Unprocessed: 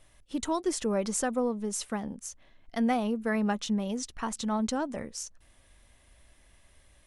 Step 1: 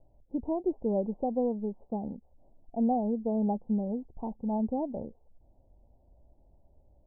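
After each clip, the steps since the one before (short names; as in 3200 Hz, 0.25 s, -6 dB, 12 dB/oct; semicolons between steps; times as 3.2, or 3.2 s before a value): steep low-pass 870 Hz 72 dB/oct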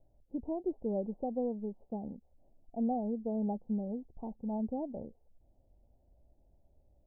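bell 1000 Hz -6 dB 0.43 oct; gain -5 dB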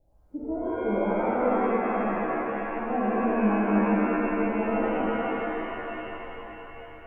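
shimmer reverb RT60 3.5 s, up +7 st, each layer -2 dB, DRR -8 dB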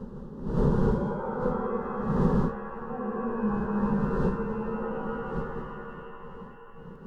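wind noise 260 Hz -24 dBFS; fixed phaser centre 450 Hz, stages 8; pre-echo 0.106 s -14 dB; gain -4 dB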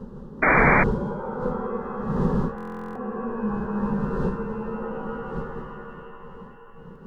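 painted sound noise, 0.42–0.84, 220–2400 Hz -19 dBFS; stuck buffer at 2.56, samples 1024, times 16; gain +1 dB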